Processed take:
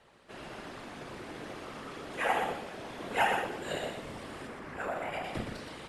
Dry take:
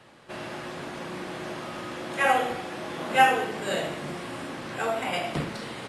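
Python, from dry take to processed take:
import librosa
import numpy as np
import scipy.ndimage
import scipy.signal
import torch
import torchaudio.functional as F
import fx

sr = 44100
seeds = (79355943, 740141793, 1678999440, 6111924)

y = fx.high_shelf_res(x, sr, hz=2600.0, db=-6.0, q=1.5, at=(4.47, 5.24))
y = fx.whisperise(y, sr, seeds[0])
y = y + 10.0 ** (-6.0 / 20.0) * np.pad(y, (int(120 * sr / 1000.0), 0))[:len(y)]
y = y * librosa.db_to_amplitude(-8.5)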